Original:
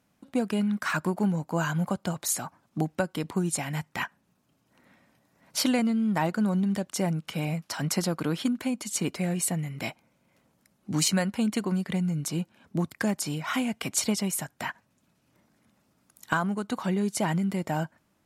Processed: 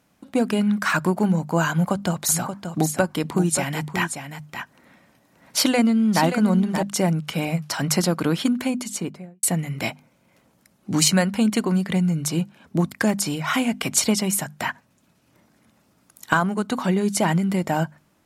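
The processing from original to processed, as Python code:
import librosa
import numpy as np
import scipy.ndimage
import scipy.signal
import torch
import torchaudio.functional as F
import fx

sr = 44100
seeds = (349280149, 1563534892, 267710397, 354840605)

y = fx.echo_single(x, sr, ms=579, db=-8.5, at=(1.71, 6.83))
y = fx.studio_fade_out(y, sr, start_s=8.67, length_s=0.76)
y = fx.hum_notches(y, sr, base_hz=50, count=5)
y = y * librosa.db_to_amplitude(7.0)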